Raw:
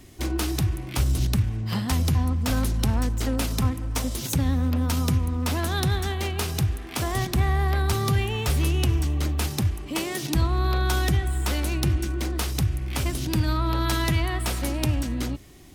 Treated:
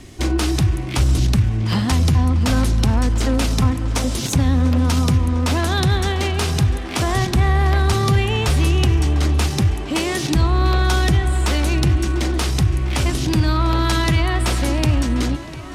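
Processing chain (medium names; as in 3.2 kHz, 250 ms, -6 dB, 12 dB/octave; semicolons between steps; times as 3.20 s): in parallel at 0 dB: peak limiter -19.5 dBFS, peak gain reduction 9 dB; on the sum: low-pass 9 kHz 12 dB/octave; tape echo 698 ms, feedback 82%, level -14 dB, low-pass 5 kHz; trim +2.5 dB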